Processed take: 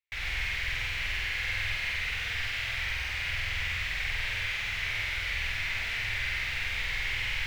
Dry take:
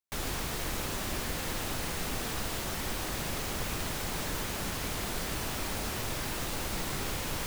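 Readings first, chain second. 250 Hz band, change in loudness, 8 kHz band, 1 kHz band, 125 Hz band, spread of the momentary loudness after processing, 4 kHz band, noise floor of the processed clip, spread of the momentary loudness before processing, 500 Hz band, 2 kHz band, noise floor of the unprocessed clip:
-17.5 dB, +3.5 dB, -10.0 dB, -6.5 dB, -2.0 dB, 1 LU, +4.0 dB, -34 dBFS, 0 LU, -12.5 dB, +10.5 dB, -36 dBFS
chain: EQ curve 100 Hz 0 dB, 170 Hz -16 dB, 300 Hz -22 dB, 450 Hz -14 dB, 810 Hz -10 dB, 1200 Hz -7 dB, 2100 Hz +14 dB, 9500 Hz -17 dB; flutter echo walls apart 8.2 m, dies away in 1.2 s; gain -3 dB

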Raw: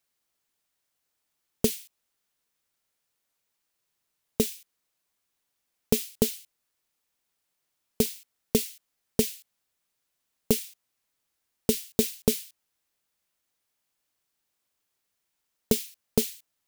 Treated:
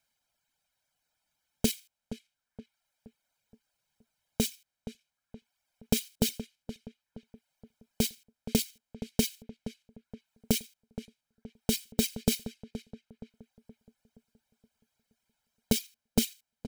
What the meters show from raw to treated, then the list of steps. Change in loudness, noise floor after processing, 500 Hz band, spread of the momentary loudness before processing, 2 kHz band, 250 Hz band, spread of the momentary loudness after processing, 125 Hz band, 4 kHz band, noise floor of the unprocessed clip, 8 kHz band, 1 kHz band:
-3.5 dB, under -85 dBFS, -7.5 dB, 13 LU, +1.0 dB, -1.0 dB, 17 LU, -0.5 dB, +1.0 dB, -80 dBFS, -2.0 dB, -0.5 dB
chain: reverb removal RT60 1.1 s; high shelf 8600 Hz -8 dB; comb 1.3 ms, depth 65%; in parallel at +0.5 dB: level quantiser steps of 20 dB; on the sum: limiter -12 dBFS, peak gain reduction 11 dB; on a send: darkening echo 0.472 s, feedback 46%, low-pass 1700 Hz, level -12 dB; on the sum: gain +1 dB

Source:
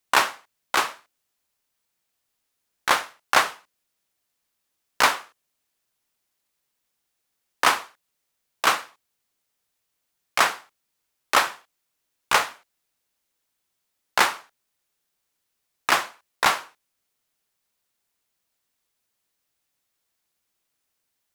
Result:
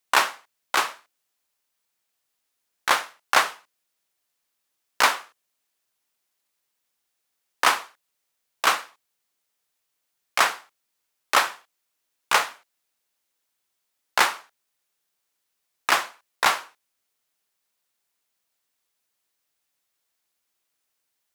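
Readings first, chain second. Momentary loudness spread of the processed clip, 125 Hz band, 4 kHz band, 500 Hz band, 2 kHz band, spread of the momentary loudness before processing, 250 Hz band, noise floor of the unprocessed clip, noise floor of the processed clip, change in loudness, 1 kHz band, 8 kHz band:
10 LU, n/a, 0.0 dB, -1.5 dB, 0.0 dB, 10 LU, -3.5 dB, -78 dBFS, -78 dBFS, -0.5 dB, -0.5 dB, 0.0 dB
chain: low shelf 250 Hz -8 dB

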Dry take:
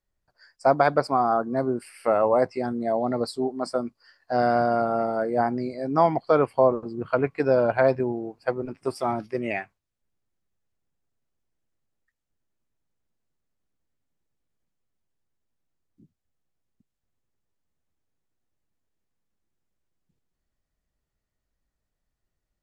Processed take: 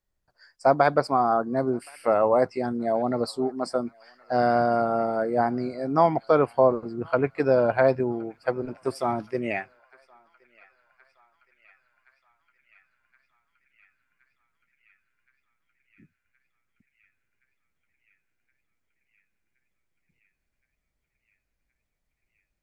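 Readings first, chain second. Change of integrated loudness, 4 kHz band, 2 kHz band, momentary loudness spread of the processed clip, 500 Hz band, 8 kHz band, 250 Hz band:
0.0 dB, 0.0 dB, 0.0 dB, 9 LU, 0.0 dB, n/a, 0.0 dB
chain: narrowing echo 1.07 s, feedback 84%, band-pass 2400 Hz, level -23.5 dB

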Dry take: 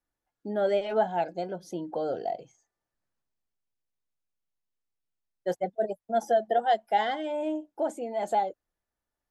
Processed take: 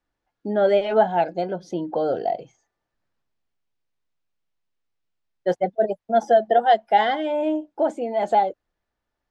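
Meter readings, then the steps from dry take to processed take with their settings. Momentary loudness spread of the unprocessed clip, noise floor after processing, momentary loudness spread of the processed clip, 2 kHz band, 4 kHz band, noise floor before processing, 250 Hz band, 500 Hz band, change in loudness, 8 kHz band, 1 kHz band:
10 LU, -82 dBFS, 10 LU, +7.5 dB, +6.5 dB, under -85 dBFS, +7.5 dB, +7.5 dB, +7.5 dB, n/a, +7.5 dB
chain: LPF 4500 Hz 12 dB/oct; gain +7.5 dB

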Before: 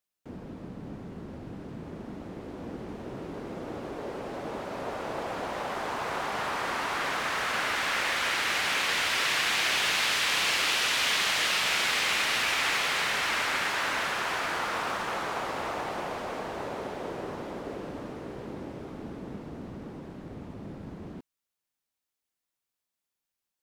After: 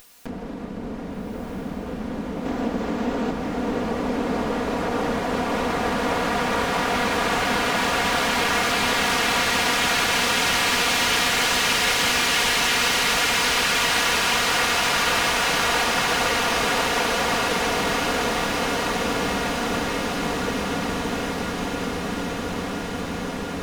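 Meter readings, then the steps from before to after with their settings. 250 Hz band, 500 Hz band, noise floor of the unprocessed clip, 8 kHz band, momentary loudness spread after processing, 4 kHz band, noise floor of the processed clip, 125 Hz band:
+13.5 dB, +11.0 dB, under -85 dBFS, +9.5 dB, 11 LU, +7.0 dB, -32 dBFS, +11.0 dB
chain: minimum comb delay 4.2 ms; spectral gain 2.46–3.31, 210–8100 Hz +9 dB; compressor, threshold -32 dBFS, peak gain reduction 8 dB; on a send: diffused feedback echo 0.584 s, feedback 79%, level -4 dB; on the sum: upward compressor, threshold -36 dBFS; diffused feedback echo 1.408 s, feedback 68%, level -3 dB; gain +8.5 dB

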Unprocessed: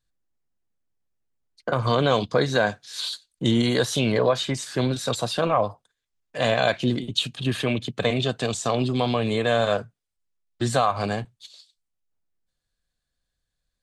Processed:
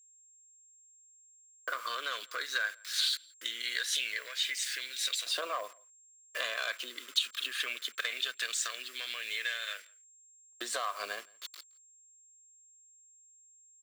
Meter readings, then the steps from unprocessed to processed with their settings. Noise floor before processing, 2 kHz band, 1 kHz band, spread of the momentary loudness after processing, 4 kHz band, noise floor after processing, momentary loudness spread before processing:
-82 dBFS, -4.5 dB, -14.5 dB, 10 LU, -4.0 dB, -61 dBFS, 8 LU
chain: level-crossing sampler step -39.5 dBFS; hard clip -13 dBFS, distortion -22 dB; compressor, threshold -27 dBFS, peak gain reduction 10.5 dB; HPF 160 Hz 12 dB/oct; whine 7500 Hz -60 dBFS; fixed phaser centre 350 Hz, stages 4; LFO high-pass saw up 0.19 Hz 870–2200 Hz; outdoor echo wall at 29 m, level -27 dB; gain +1.5 dB

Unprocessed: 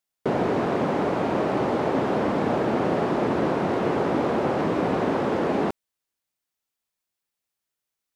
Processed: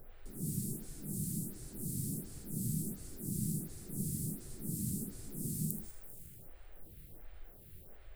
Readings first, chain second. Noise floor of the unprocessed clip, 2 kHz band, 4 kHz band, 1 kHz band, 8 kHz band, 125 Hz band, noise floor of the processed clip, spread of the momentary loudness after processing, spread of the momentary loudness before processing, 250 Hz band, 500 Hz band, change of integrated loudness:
-85 dBFS, under -30 dB, -17.5 dB, under -40 dB, n/a, -7.0 dB, -55 dBFS, 18 LU, 1 LU, -15.5 dB, -32.0 dB, -15.5 dB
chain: inverse Chebyshev band-stop 640–2400 Hz, stop band 70 dB; RIAA curve recording; non-linear reverb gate 0.22 s rising, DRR -0.5 dB; added noise brown -53 dBFS; fifteen-band EQ 250 Hz -9 dB, 1000 Hz -9 dB, 6300 Hz -11 dB; on a send: thinning echo 79 ms, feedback 74%, level -8.5 dB; on the sum: vibrato 11 Hz 38 cents; photocell phaser 1.4 Hz; gain +6.5 dB

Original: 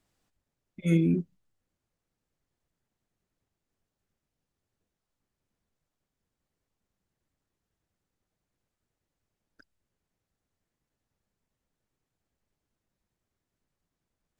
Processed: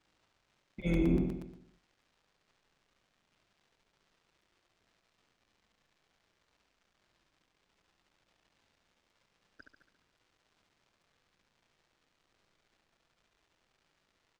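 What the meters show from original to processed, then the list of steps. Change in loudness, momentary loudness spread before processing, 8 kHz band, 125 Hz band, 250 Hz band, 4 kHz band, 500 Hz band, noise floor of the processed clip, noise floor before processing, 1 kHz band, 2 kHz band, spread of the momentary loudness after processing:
-5.5 dB, 14 LU, -7.5 dB, -6.5 dB, -4.0 dB, -2.5 dB, -2.0 dB, -78 dBFS, under -85 dBFS, +10.5 dB, -1.5 dB, 16 LU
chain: octaver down 2 oct, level +1 dB; limiter -21.5 dBFS, peak gain reduction 11.5 dB; low shelf 190 Hz -10.5 dB; AGC gain up to 4 dB; crackle 330/s -56 dBFS; air absorption 110 m; feedback echo 70 ms, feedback 57%, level -5 dB; crackling interface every 0.12 s, samples 256, repeat, from 0.57

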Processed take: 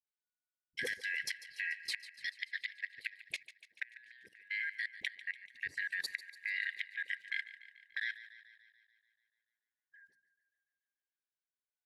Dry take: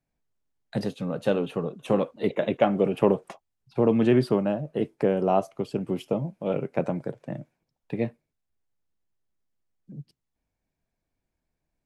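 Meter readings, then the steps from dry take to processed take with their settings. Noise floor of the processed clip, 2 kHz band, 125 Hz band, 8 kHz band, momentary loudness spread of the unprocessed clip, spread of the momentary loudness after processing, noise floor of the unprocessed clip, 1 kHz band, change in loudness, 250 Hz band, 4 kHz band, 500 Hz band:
under -85 dBFS, +6.0 dB, under -40 dB, n/a, 14 LU, 12 LU, -83 dBFS, under -40 dB, -13.5 dB, under -40 dB, 0.0 dB, under -30 dB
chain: four-band scrambler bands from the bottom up 4123; HPF 95 Hz; gate -46 dBFS, range -21 dB; notches 60/120/180/240/300 Hz; dynamic EQ 4500 Hz, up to -4 dB, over -35 dBFS, Q 0.73; flipped gate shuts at -15 dBFS, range -26 dB; limiter -22.5 dBFS, peak gain reduction 11.5 dB; band shelf 1100 Hz -12.5 dB; dispersion highs, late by 41 ms, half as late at 490 Hz; level quantiser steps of 23 dB; on a send: thinning echo 0.145 s, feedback 63%, high-pass 450 Hz, level -15 dB; on the sum: gain +9 dB

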